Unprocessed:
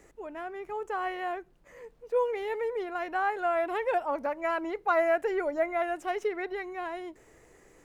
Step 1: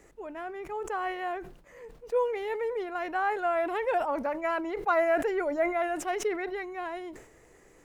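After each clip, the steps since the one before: decay stretcher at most 88 dB/s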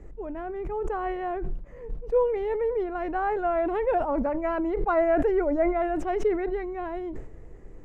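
tilt EQ -4.5 dB/octave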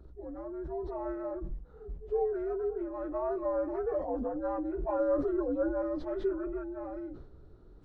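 frequency axis rescaled in octaves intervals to 83%; trim -5.5 dB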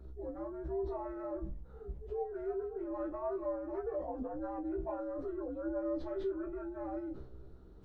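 compression, threshold -36 dBFS, peak gain reduction 11 dB; feedback comb 65 Hz, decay 0.16 s, harmonics all, mix 100%; trim +5.5 dB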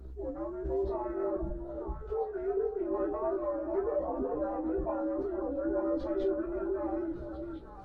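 repeats whose band climbs or falls 449 ms, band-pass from 430 Hz, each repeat 1.4 oct, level -3 dB; trim +4.5 dB; Opus 16 kbps 48 kHz

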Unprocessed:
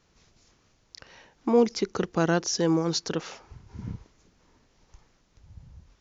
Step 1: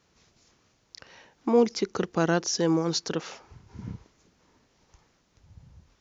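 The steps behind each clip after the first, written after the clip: high-pass 89 Hz 6 dB/octave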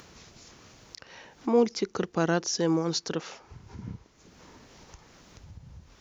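upward compressor, threshold -37 dBFS; trim -1.5 dB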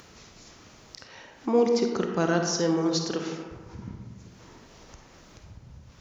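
reverberation RT60 1.5 s, pre-delay 10 ms, DRR 3 dB

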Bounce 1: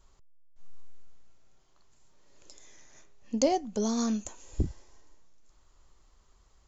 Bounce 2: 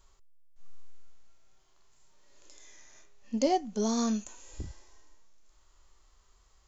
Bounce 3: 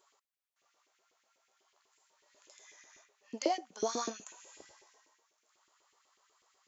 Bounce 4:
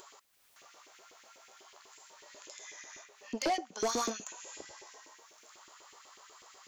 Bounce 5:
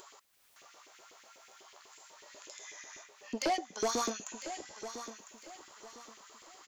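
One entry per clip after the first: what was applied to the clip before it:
harmonic-percussive split percussive -13 dB; tilt shelf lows -3.5 dB, about 660 Hz; trim +2.5 dB
LFO high-pass saw up 8.1 Hz 330–2600 Hz; trim -3.5 dB
in parallel at +1 dB: upward compressor, threshold -46 dBFS; on the sum: saturation -26 dBFS, distortion -8 dB
feedback delay 1003 ms, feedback 32%, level -11.5 dB

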